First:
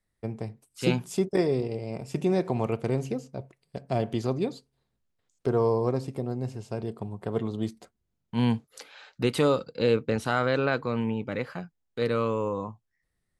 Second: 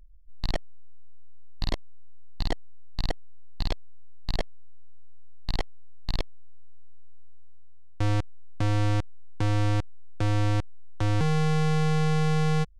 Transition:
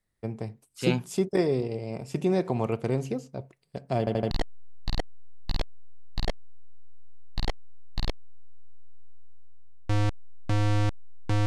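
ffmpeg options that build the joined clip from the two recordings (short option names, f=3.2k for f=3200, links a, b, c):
-filter_complex "[0:a]apad=whole_dur=11.46,atrim=end=11.46,asplit=4[a][b][c][d];[a]atrim=end=4.072[e];[b]atrim=start=3.988:end=4.072[f];[c]atrim=start=3.988:end=4.072[g];[d]atrim=start=3.988:end=4.072[h];[1:a]atrim=start=2.418:end=9.57[i];[e][f]acrossfade=d=0.004:c1=hsin:c2=hsin[j];[j][g]acrossfade=d=0.004:c1=hsin:c2=hsin[k];[k][h]acrossfade=d=0.004:c1=hsin:c2=hsin[l];[l][i]acrossfade=d=0.004:c1=hsin:c2=hsin"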